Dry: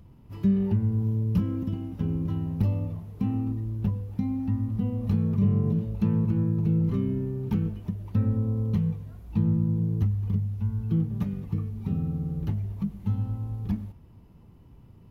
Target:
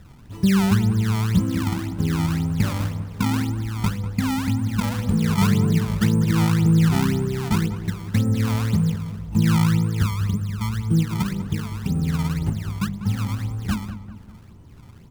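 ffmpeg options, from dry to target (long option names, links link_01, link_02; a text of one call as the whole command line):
ffmpeg -i in.wav -filter_complex "[0:a]acrusher=samples=23:mix=1:aa=0.000001:lfo=1:lforange=36.8:lforate=1.9,bandreject=frequency=49.9:width_type=h:width=4,bandreject=frequency=99.8:width_type=h:width=4,bandreject=frequency=149.7:width_type=h:width=4,bandreject=frequency=199.6:width_type=h:width=4,bandreject=frequency=249.5:width_type=h:width=4,bandreject=frequency=299.4:width_type=h:width=4,bandreject=frequency=349.3:width_type=h:width=4,bandreject=frequency=399.2:width_type=h:width=4,bandreject=frequency=449.1:width_type=h:width=4,bandreject=frequency=499:width_type=h:width=4,bandreject=frequency=548.9:width_type=h:width=4,bandreject=frequency=598.8:width_type=h:width=4,bandreject=frequency=648.7:width_type=h:width=4,asplit=2[link_01][link_02];[link_02]adelay=196,lowpass=frequency=1700:poles=1,volume=-11dB,asplit=2[link_03][link_04];[link_04]adelay=196,lowpass=frequency=1700:poles=1,volume=0.52,asplit=2[link_05][link_06];[link_06]adelay=196,lowpass=frequency=1700:poles=1,volume=0.52,asplit=2[link_07][link_08];[link_08]adelay=196,lowpass=frequency=1700:poles=1,volume=0.52,asplit=2[link_09][link_10];[link_10]adelay=196,lowpass=frequency=1700:poles=1,volume=0.52,asplit=2[link_11][link_12];[link_12]adelay=196,lowpass=frequency=1700:poles=1,volume=0.52[link_13];[link_03][link_05][link_07][link_09][link_11][link_13]amix=inputs=6:normalize=0[link_14];[link_01][link_14]amix=inputs=2:normalize=0,atempo=1,volume=6dB" out.wav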